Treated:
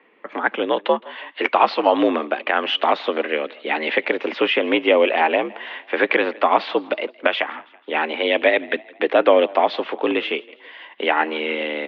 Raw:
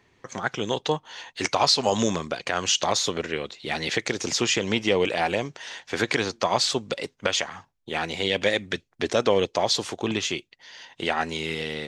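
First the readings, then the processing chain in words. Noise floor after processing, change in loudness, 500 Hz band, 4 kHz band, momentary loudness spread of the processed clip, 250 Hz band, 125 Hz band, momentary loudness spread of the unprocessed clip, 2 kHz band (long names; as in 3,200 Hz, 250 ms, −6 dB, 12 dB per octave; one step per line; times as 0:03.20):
−50 dBFS, +5.0 dB, +7.0 dB, −1.5 dB, 10 LU, +4.5 dB, below −10 dB, 11 LU, +7.0 dB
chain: on a send: echo with shifted repeats 164 ms, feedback 48%, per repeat +32 Hz, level −22.5 dB
on the sum: single-sideband voice off tune +65 Hz 180–2,900 Hz
level +7 dB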